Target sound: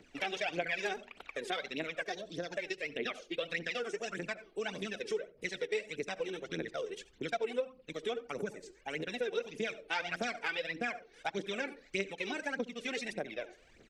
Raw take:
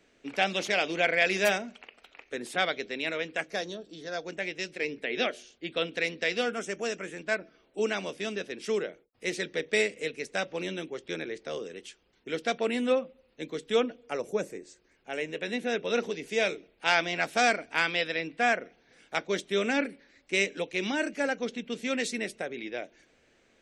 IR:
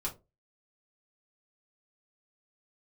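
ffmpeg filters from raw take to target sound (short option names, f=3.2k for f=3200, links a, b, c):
-filter_complex "[0:a]asplit=2[a][b];[1:a]atrim=start_sample=2205,lowshelf=f=470:g=7.5,adelay=130[c];[b][c]afir=irnorm=-1:irlink=0,volume=-21.5dB[d];[a][d]amix=inputs=2:normalize=0,aphaser=in_gain=1:out_gain=1:delay=2.8:decay=0.71:speed=0.98:type=triangular,aresample=32000,aresample=44100,atempo=1.7,acrossover=split=7600[e][f];[f]acompressor=threshold=-57dB:ratio=4:attack=1:release=60[g];[e][g]amix=inputs=2:normalize=0,asplit=2[h][i];[i]adelay=66,lowpass=f=860:p=1,volume=-19dB,asplit=2[j][k];[k]adelay=66,lowpass=f=860:p=1,volume=0.32,asplit=2[l][m];[m]adelay=66,lowpass=f=860:p=1,volume=0.32[n];[h][j][l][n]amix=inputs=4:normalize=0,acompressor=threshold=-38dB:ratio=2.5"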